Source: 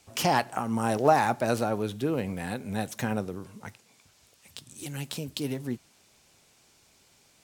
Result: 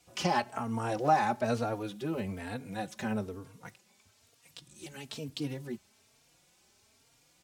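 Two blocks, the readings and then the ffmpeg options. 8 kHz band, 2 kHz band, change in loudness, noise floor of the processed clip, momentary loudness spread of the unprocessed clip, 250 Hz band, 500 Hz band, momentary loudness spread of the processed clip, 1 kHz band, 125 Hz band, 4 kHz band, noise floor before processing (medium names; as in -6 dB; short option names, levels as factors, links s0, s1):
-8.0 dB, -5.0 dB, -4.5 dB, -67 dBFS, 20 LU, -5.0 dB, -6.0 dB, 22 LU, -3.5 dB, -4.5 dB, -5.0 dB, -63 dBFS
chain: -filter_complex "[0:a]acrossover=split=7400[s0][s1];[s1]acompressor=threshold=0.002:ratio=4:attack=1:release=60[s2];[s0][s2]amix=inputs=2:normalize=0,asplit=2[s3][s4];[s4]adelay=3.7,afreqshift=1.1[s5];[s3][s5]amix=inputs=2:normalize=1,volume=0.841"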